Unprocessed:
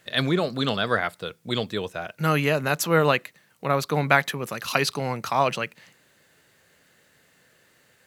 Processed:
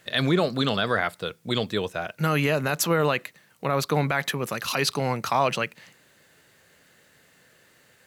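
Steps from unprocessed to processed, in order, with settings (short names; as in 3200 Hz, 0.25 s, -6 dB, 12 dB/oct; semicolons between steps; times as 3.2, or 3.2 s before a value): limiter -13 dBFS, peak gain reduction 11 dB; gain +2 dB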